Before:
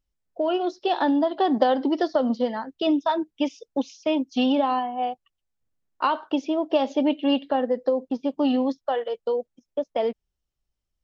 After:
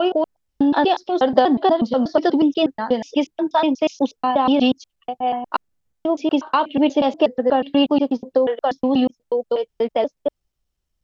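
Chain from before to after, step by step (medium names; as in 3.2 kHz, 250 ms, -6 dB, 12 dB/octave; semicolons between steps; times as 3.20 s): slices played last to first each 121 ms, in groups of 5; trim +5.5 dB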